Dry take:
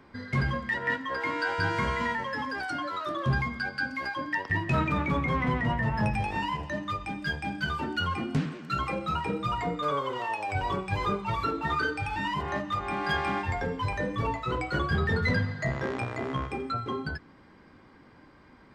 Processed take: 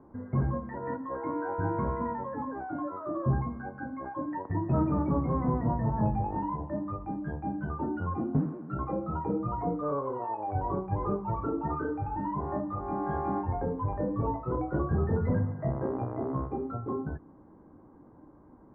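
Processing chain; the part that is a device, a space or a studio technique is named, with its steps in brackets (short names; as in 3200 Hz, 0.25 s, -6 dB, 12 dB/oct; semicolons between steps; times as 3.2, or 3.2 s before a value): under water (LPF 1000 Hz 24 dB/oct; bell 310 Hz +5.5 dB 0.26 oct)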